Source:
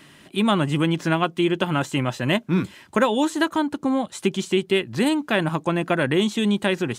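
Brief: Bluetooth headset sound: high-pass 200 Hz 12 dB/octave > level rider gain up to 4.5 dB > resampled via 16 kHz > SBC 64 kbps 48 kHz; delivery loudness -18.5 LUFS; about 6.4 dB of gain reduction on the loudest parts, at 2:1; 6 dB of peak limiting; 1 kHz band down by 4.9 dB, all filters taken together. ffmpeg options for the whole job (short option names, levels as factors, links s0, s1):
-af "equalizer=f=1000:t=o:g=-6.5,acompressor=threshold=0.0398:ratio=2,alimiter=limit=0.106:level=0:latency=1,highpass=200,dynaudnorm=m=1.68,aresample=16000,aresample=44100,volume=4.47" -ar 48000 -c:a sbc -b:a 64k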